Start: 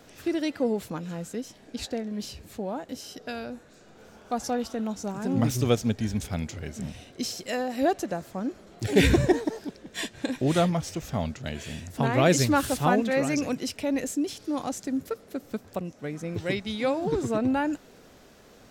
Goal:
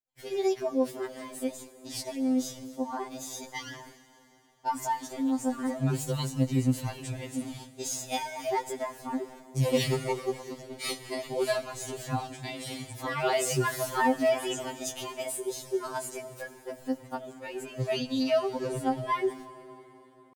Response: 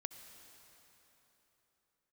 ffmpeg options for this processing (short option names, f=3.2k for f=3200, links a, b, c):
-filter_complex "[0:a]agate=range=-53dB:threshold=-45dB:ratio=16:detection=peak,highshelf=f=11k:g=-6.5,acompressor=threshold=-36dB:ratio=1.5,asetrate=58866,aresample=44100,atempo=0.749154,asplit=2[a][b];[1:a]atrim=start_sample=2205,highshelf=f=7.1k:g=10.5[c];[b][c]afir=irnorm=-1:irlink=0,volume=-1dB[d];[a][d]amix=inputs=2:normalize=0,asetrate=40517,aresample=44100,afftfilt=real='re*2.45*eq(mod(b,6),0)':imag='im*2.45*eq(mod(b,6),0)':win_size=2048:overlap=0.75"